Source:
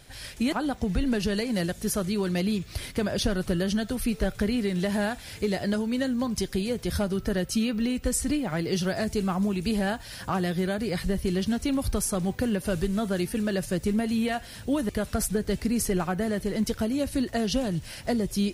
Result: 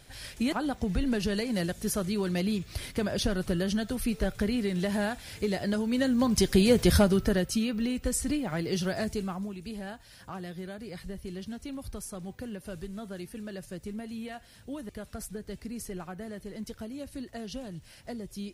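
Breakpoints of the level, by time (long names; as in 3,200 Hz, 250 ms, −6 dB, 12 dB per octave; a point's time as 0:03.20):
0:05.72 −2.5 dB
0:06.81 +8.5 dB
0:07.61 −3 dB
0:09.06 −3 dB
0:09.57 −12.5 dB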